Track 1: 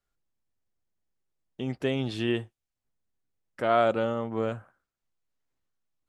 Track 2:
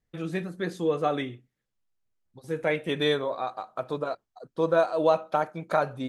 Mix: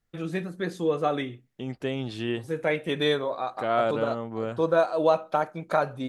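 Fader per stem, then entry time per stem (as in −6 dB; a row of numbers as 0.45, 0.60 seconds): −2.0, +0.5 decibels; 0.00, 0.00 seconds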